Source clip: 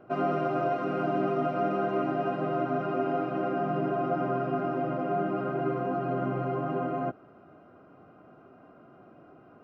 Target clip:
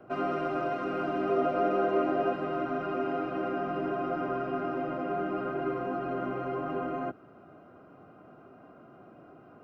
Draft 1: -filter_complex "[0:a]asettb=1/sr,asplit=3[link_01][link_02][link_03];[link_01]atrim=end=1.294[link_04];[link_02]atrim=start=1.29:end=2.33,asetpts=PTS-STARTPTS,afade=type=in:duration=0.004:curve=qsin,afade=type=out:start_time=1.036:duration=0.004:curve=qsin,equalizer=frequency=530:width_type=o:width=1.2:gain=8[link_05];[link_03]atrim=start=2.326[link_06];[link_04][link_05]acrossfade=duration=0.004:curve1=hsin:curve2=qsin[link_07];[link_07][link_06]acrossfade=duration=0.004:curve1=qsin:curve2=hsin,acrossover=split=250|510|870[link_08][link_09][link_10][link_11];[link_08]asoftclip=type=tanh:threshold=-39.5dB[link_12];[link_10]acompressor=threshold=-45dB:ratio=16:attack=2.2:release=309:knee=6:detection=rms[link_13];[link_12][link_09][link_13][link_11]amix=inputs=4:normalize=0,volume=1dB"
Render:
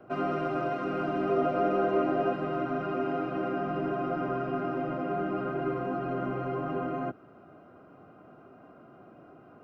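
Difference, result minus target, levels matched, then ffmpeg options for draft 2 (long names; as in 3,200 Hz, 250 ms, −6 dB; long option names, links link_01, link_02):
soft clipping: distortion −5 dB
-filter_complex "[0:a]asettb=1/sr,asplit=3[link_01][link_02][link_03];[link_01]atrim=end=1.294[link_04];[link_02]atrim=start=1.29:end=2.33,asetpts=PTS-STARTPTS,afade=type=in:duration=0.004:curve=qsin,afade=type=out:start_time=1.036:duration=0.004:curve=qsin,equalizer=frequency=530:width_type=o:width=1.2:gain=8[link_05];[link_03]atrim=start=2.326[link_06];[link_04][link_05]acrossfade=duration=0.004:curve1=hsin:curve2=qsin[link_07];[link_07][link_06]acrossfade=duration=0.004:curve1=qsin:curve2=hsin,acrossover=split=250|510|870[link_08][link_09][link_10][link_11];[link_08]asoftclip=type=tanh:threshold=-48dB[link_12];[link_10]acompressor=threshold=-45dB:ratio=16:attack=2.2:release=309:knee=6:detection=rms[link_13];[link_12][link_09][link_13][link_11]amix=inputs=4:normalize=0,volume=1dB"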